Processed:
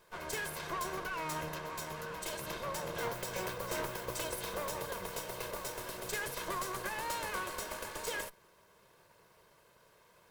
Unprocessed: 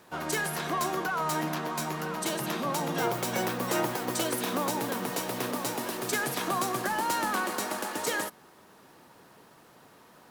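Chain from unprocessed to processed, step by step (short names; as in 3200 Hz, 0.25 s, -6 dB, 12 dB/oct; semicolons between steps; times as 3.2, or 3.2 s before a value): minimum comb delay 1.9 ms; gain -7 dB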